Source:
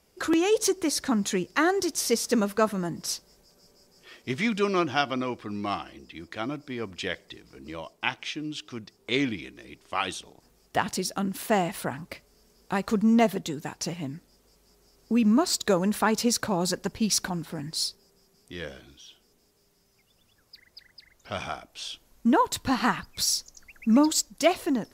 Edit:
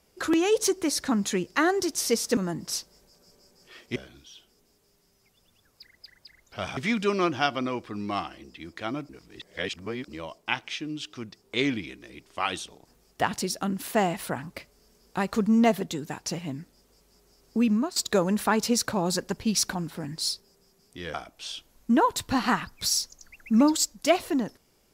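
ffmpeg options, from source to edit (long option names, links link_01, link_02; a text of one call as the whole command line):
ffmpeg -i in.wav -filter_complex "[0:a]asplit=8[link_01][link_02][link_03][link_04][link_05][link_06][link_07][link_08];[link_01]atrim=end=2.372[link_09];[link_02]atrim=start=2.728:end=4.322[link_10];[link_03]atrim=start=18.688:end=21.502[link_11];[link_04]atrim=start=4.318:end=6.642[link_12];[link_05]atrim=start=6.638:end=7.632,asetpts=PTS-STARTPTS,areverse[link_13];[link_06]atrim=start=7.628:end=15.51,asetpts=PTS-STARTPTS,afade=type=out:start_time=7.562:duration=0.32:silence=0.158489[link_14];[link_07]atrim=start=15.51:end=18.692,asetpts=PTS-STARTPTS,afade=type=in:duration=0.004:curve=hsin:silence=0.158489[link_15];[link_08]atrim=start=21.498[link_16];[link_09][link_10]acrossfade=duration=0.004:curve1=hsin:curve2=hsin[link_17];[link_17][link_11]acrossfade=duration=0.004:curve1=hsin:curve2=hsin[link_18];[link_18][link_12]acrossfade=duration=0.004:curve1=hsin:curve2=hsin[link_19];[link_19][link_13]acrossfade=duration=0.004:curve1=hsin:curve2=hsin[link_20];[link_14][link_15]concat=n=2:v=0:a=1[link_21];[link_20][link_21]acrossfade=duration=0.004:curve1=hsin:curve2=hsin[link_22];[link_22][link_16]acrossfade=duration=0.004:curve1=hsin:curve2=hsin" out.wav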